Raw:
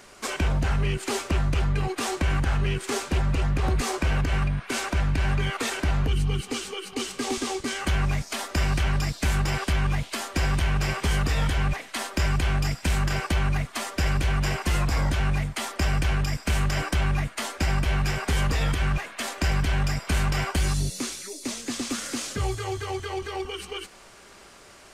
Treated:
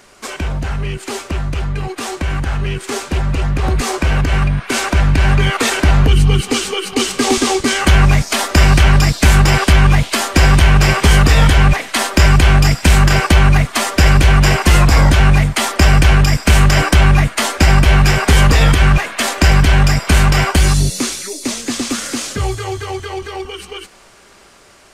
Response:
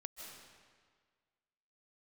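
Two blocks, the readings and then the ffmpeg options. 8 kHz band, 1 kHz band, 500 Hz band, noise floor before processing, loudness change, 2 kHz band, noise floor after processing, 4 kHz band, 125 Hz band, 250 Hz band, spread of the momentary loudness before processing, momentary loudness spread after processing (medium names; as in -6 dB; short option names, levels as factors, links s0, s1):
+13.0 dB, +13.0 dB, +12.0 dB, -49 dBFS, +13.5 dB, +13.5 dB, -44 dBFS, +13.5 dB, +13.5 dB, +13.0 dB, 6 LU, 12 LU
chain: -af "dynaudnorm=f=710:g=13:m=3.76,volume=1.5"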